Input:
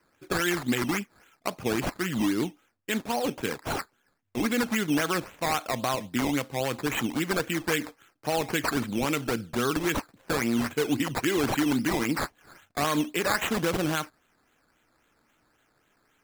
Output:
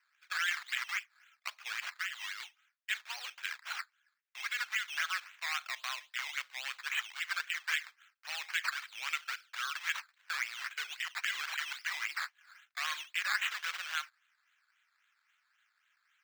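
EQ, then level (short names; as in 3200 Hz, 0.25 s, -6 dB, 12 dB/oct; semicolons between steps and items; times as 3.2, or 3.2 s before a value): HPF 1500 Hz 24 dB/oct; high shelf 4900 Hz -9 dB; bell 11000 Hz -10 dB 0.71 oct; 0.0 dB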